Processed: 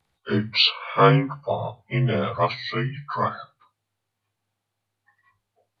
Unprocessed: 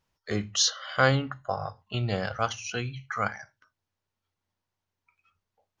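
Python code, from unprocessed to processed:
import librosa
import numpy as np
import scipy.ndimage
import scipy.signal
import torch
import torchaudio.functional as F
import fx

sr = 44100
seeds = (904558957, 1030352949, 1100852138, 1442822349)

y = fx.partial_stretch(x, sr, pct=88)
y = F.gain(torch.from_numpy(y), 7.5).numpy()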